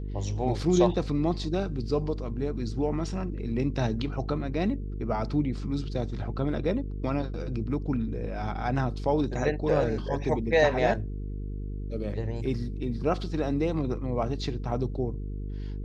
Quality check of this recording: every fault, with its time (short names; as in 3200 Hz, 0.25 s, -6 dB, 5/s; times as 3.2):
buzz 50 Hz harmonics 9 -34 dBFS